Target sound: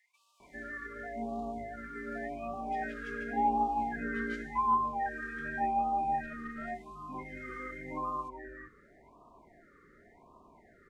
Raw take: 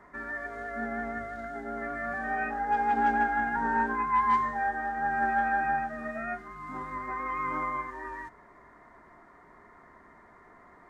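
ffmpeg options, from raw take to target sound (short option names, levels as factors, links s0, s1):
-filter_complex "[0:a]acrossover=split=2000[s0][s1];[s0]adelay=400[s2];[s2][s1]amix=inputs=2:normalize=0,asettb=1/sr,asplit=3[s3][s4][s5];[s3]atrim=end=6.234[s6];[s4]atrim=start=6.23:end=6.71,asetpts=PTS-STARTPTS,afade=t=in:d=0.004:c=qsin,afade=t=out:st=0.476:d=0.004:c=qsin,aeval=exprs='0.0596*(cos(1*acos(clip(val(0)/0.0596,-1,1)))-cos(1*PI/2))+0.00237*(cos(4*acos(clip(val(0)/0.0596,-1,1)))-cos(4*PI/2))':c=same[s7];[s5]atrim=start=6.706[s8];[s6][s7]acrossfade=d=0.004:c1=hsin:c2=qsin[s9];[s9][s8]acrossfade=d=0.004:c1=qsin:c2=hsin,afftfilt=real='re*(1-between(b*sr/1024,770*pow(1800/770,0.5+0.5*sin(2*PI*0.89*pts/sr))/1.41,770*pow(1800/770,0.5+0.5*sin(2*PI*0.89*pts/sr))*1.41))':imag='im*(1-between(b*sr/1024,770*pow(1800/770,0.5+0.5*sin(2*PI*0.89*pts/sr))/1.41,770*pow(1800/770,0.5+0.5*sin(2*PI*0.89*pts/sr))*1.41))':win_size=1024:overlap=0.75,volume=0.794"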